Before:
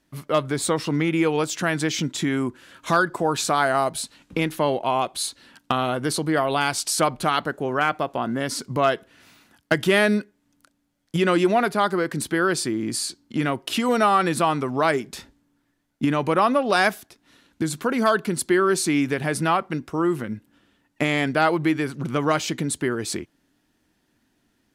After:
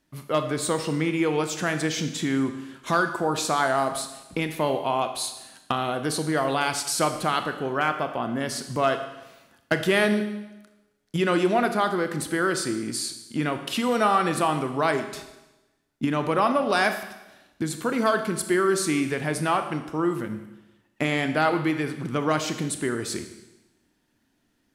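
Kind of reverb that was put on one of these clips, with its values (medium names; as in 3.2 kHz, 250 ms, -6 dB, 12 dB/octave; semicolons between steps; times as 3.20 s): Schroeder reverb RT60 1 s, combs from 26 ms, DRR 7.5 dB; trim -3 dB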